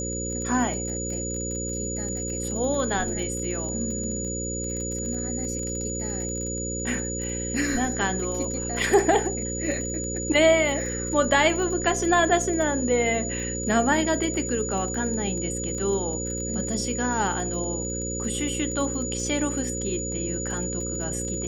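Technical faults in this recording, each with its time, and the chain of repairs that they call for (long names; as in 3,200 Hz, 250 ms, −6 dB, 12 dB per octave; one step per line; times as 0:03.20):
mains buzz 60 Hz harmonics 9 −32 dBFS
surface crackle 23 per second −31 dBFS
whistle 6,900 Hz −31 dBFS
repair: click removal
hum removal 60 Hz, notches 9
notch filter 6,900 Hz, Q 30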